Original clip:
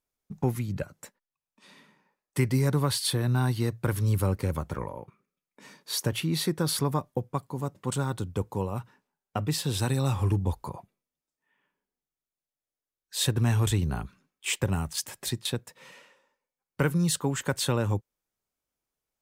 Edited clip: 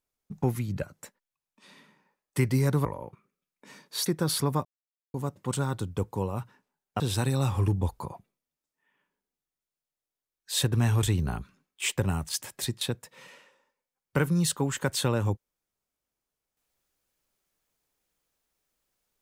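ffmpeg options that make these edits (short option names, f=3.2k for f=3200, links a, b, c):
-filter_complex "[0:a]asplit=6[a][b][c][d][e][f];[a]atrim=end=2.852[g];[b]atrim=start=4.798:end=6.012[h];[c]atrim=start=6.448:end=7.04,asetpts=PTS-STARTPTS,afade=t=out:st=0.588:d=0.004:c=hsin[i];[d]atrim=start=7.04:end=7.53,asetpts=PTS-STARTPTS,volume=0[j];[e]atrim=start=7.53:end=9.392,asetpts=PTS-STARTPTS,afade=t=in:d=0.004:c=hsin[k];[f]atrim=start=9.638[l];[g][h]acrossfade=d=0.004:c1=hsin:c2=hsin[m];[i][j][k]concat=n=3:v=0:a=1[n];[m][n]acrossfade=d=0.004:c1=hsin:c2=hsin[o];[o][l]acrossfade=d=0.004:c1=hsin:c2=hsin"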